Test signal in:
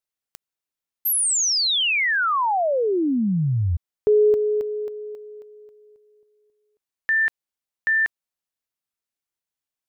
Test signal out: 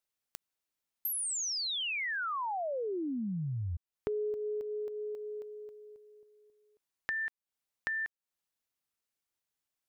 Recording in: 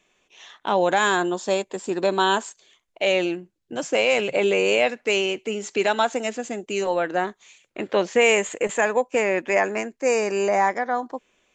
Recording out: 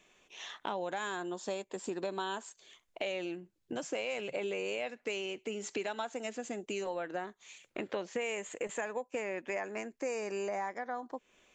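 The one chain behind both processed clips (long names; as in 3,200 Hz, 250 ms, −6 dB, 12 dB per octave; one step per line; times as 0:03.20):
downward compressor 4 to 1, threshold −37 dBFS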